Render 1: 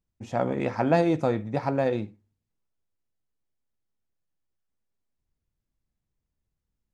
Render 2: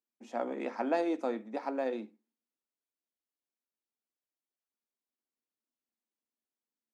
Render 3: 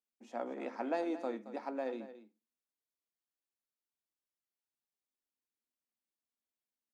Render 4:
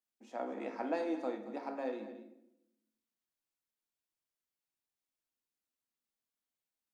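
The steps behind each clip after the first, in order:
Chebyshev high-pass 220 Hz, order 6; trim -7.5 dB
delay 224 ms -13.5 dB; trim -5 dB
simulated room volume 240 m³, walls mixed, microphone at 0.58 m; trim -1 dB

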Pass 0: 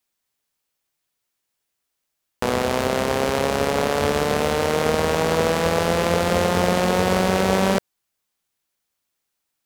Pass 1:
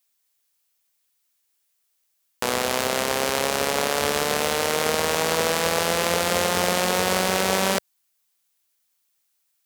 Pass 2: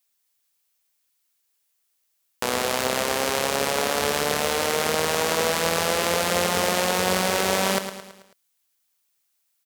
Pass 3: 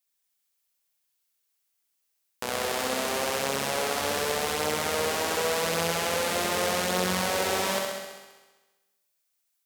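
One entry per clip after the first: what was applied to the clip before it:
tilt EQ +2.5 dB/octave; trim -1.5 dB
feedback delay 109 ms, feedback 50%, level -10 dB; trim -1 dB
flutter echo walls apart 11.3 m, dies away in 1.2 s; trim -7 dB

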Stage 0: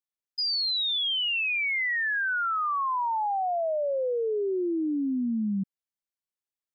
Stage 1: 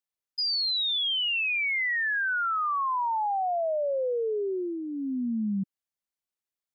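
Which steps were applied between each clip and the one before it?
dynamic bell 310 Hz, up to -7 dB, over -43 dBFS, Q 3.9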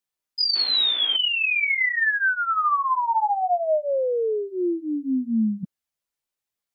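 chorus voices 2, 0.53 Hz, delay 15 ms, depth 2.4 ms; painted sound noise, 0.55–1.17 s, 220–3700 Hz -48 dBFS; trim +8 dB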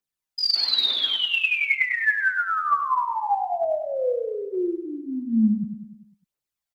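phaser 1.1 Hz, delay 1.9 ms, feedback 55%; on a send: feedback delay 99 ms, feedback 54%, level -8 dB; on the sum: trim -3.5 dB

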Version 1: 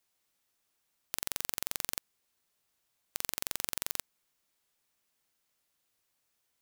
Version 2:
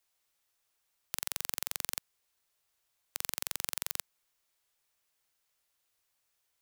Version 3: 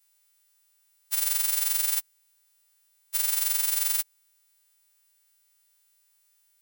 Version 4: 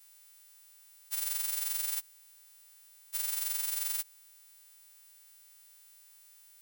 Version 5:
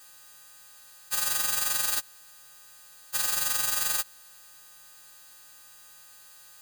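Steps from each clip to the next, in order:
peaking EQ 220 Hz -9.5 dB 1.3 oct
partials quantised in pitch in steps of 2 st
spectral levelling over time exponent 0.6; trim -8.5 dB
bit-reversed sample order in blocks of 64 samples; trim +6.5 dB

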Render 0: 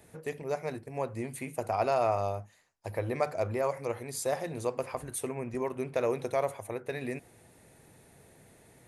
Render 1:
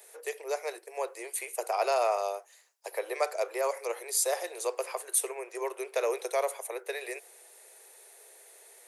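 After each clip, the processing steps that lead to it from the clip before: steep high-pass 380 Hz 72 dB/octave; treble shelf 3.5 kHz +11.5 dB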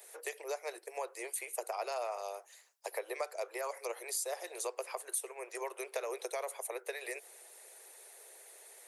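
harmonic-percussive split percussive +8 dB; compression 3:1, threshold -32 dBFS, peak gain reduction 13 dB; trim -5.5 dB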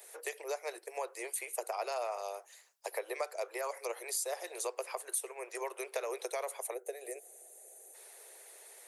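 time-frequency box 6.74–7.95 s, 800–6000 Hz -13 dB; trim +1 dB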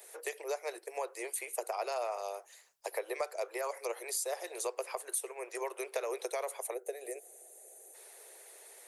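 bass shelf 230 Hz +8.5 dB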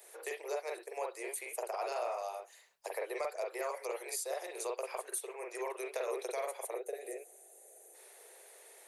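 reverberation, pre-delay 41 ms, DRR 1 dB; trim -3.5 dB

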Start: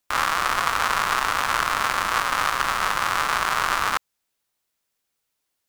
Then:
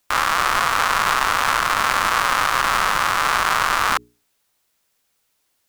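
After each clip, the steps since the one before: hum notches 60/120/180/240/300/360/420 Hz; peak limiter -13 dBFS, peak gain reduction 9 dB; trim +9 dB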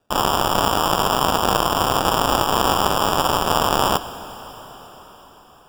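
sample-and-hold 21×; reverberation RT60 5.4 s, pre-delay 18 ms, DRR 13 dB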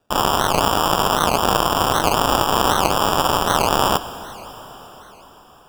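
warped record 78 rpm, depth 250 cents; trim +1 dB

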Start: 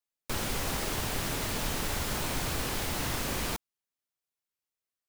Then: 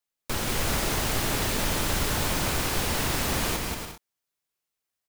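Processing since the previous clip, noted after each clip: bouncing-ball echo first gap 180 ms, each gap 0.6×, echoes 5; trim +3.5 dB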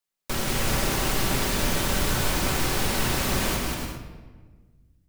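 simulated room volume 1300 m³, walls mixed, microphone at 1.1 m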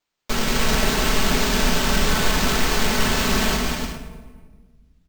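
comb 4.6 ms, depth 82%; sample-rate reducer 11 kHz, jitter 0%; trim +2.5 dB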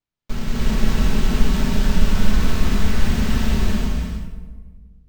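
tone controls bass +15 dB, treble -3 dB; gated-style reverb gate 340 ms rising, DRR -2.5 dB; trim -12 dB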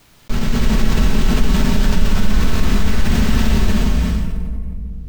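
level flattener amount 50%; trim -1 dB

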